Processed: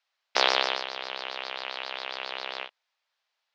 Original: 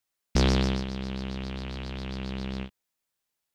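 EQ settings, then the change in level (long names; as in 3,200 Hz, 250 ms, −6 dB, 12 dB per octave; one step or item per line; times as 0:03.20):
high-pass filter 610 Hz 24 dB per octave
low-pass filter 4,800 Hz 24 dB per octave
+8.5 dB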